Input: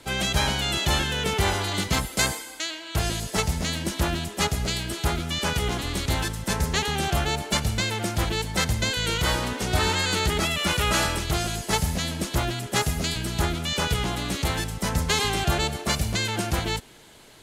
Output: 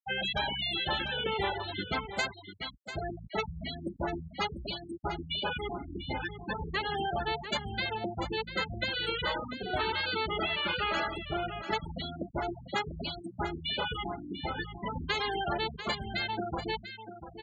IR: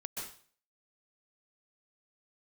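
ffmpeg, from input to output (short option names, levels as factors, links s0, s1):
-filter_complex "[0:a]bandreject=f=60:t=h:w=6,bandreject=f=120:t=h:w=6,bandreject=f=180:t=h:w=6,bandreject=f=240:t=h:w=6,bandreject=f=300:t=h:w=6,bandreject=f=360:t=h:w=6,bandreject=f=420:t=h:w=6,bandreject=f=480:t=h:w=6,afftfilt=real='re*gte(hypot(re,im),0.126)':imag='im*gte(hypot(re,im),0.126)':win_size=1024:overlap=0.75,acrossover=split=270 4200:gain=0.2 1 0.224[s0][s1][s2];[s0][s1][s2]amix=inputs=3:normalize=0,acompressor=threshold=0.0355:ratio=2.5,asplit=2[s3][s4];[s4]aecho=0:1:694:0.282[s5];[s3][s5]amix=inputs=2:normalize=0"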